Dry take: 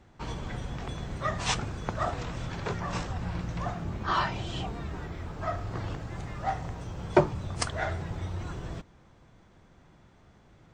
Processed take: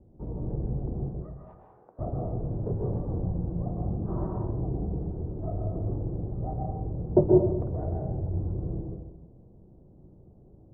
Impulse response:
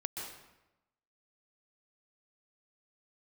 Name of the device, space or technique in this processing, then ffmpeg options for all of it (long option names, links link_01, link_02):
next room: -filter_complex "[0:a]asettb=1/sr,asplit=3[link_01][link_02][link_03];[link_01]atrim=end=1.094[link_04];[link_02]atrim=start=1.09:end=1.99,asetpts=PTS-STARTPTS,afade=type=in:duration=0.004:curve=qsin,afade=type=out:start_time=0.896:duration=0.004:curve=qsin,highpass=1400[link_05];[link_03]atrim=start=1.986[link_06];[link_04][link_05]acrossfade=duration=0.004:curve1=hsin:curve2=qsin[link_07];[link_07][link_06]acrossfade=duration=0.004:curve1=qsin:curve2=hsin,lowpass=frequency=550:width=0.5412,lowpass=frequency=550:width=1.3066[link_08];[1:a]atrim=start_sample=2205[link_09];[link_08][link_09]afir=irnorm=-1:irlink=0,volume=4dB"